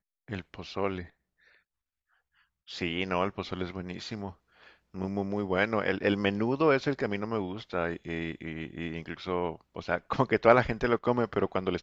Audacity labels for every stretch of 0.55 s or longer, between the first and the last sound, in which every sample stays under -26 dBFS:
0.990000	2.820000	silence
4.270000	5.010000	silence